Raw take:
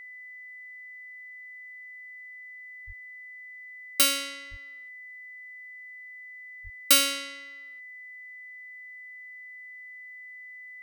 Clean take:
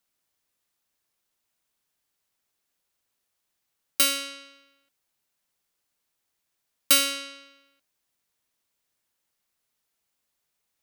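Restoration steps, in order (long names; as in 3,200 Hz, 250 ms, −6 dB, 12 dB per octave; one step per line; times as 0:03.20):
notch filter 2,000 Hz, Q 30
high-pass at the plosives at 0:02.86/0:04.50/0:06.63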